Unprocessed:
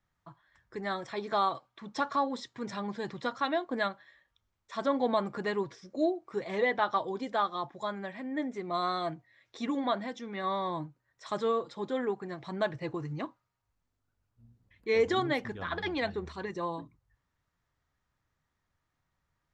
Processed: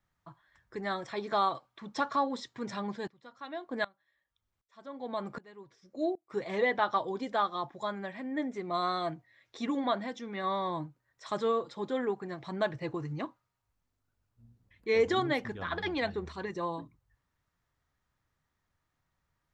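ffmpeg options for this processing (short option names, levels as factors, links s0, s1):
-filter_complex "[0:a]asplit=3[s0][s1][s2];[s0]afade=t=out:st=2.95:d=0.02[s3];[s1]aeval=exprs='val(0)*pow(10,-25*if(lt(mod(-1.3*n/s,1),2*abs(-1.3)/1000),1-mod(-1.3*n/s,1)/(2*abs(-1.3)/1000),(mod(-1.3*n/s,1)-2*abs(-1.3)/1000)/(1-2*abs(-1.3)/1000))/20)':c=same,afade=t=in:st=2.95:d=0.02,afade=t=out:st=6.29:d=0.02[s4];[s2]afade=t=in:st=6.29:d=0.02[s5];[s3][s4][s5]amix=inputs=3:normalize=0"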